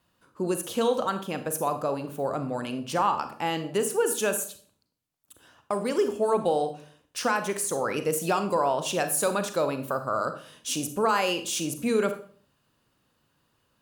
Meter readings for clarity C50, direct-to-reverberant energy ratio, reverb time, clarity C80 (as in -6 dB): 11.5 dB, 8.5 dB, 0.45 s, 15.0 dB